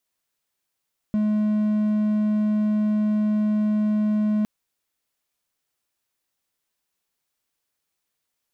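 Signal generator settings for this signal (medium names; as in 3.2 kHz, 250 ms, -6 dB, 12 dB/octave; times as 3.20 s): tone triangle 212 Hz -16.5 dBFS 3.31 s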